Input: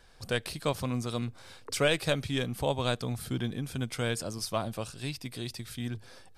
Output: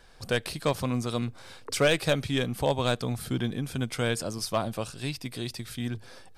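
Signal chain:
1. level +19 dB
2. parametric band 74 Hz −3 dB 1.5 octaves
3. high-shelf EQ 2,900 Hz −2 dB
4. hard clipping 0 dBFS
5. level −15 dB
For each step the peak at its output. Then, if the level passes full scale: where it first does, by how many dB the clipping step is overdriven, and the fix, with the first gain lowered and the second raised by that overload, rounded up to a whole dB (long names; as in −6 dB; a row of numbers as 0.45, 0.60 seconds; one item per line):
+5.5, +6.0, +5.0, 0.0, −15.0 dBFS
step 1, 5.0 dB
step 1 +14 dB, step 5 −10 dB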